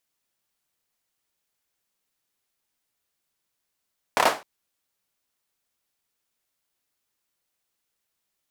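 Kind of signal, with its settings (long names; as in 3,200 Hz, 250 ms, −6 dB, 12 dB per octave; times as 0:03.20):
synth clap length 0.26 s, apart 28 ms, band 730 Hz, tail 0.29 s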